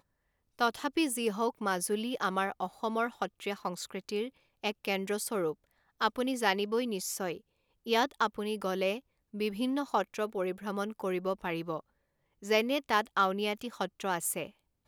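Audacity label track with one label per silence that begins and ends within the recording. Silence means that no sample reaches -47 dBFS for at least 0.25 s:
4.290000	4.630000	silence
5.530000	6.010000	silence
7.380000	7.860000	silence
8.990000	9.340000	silence
11.800000	12.420000	silence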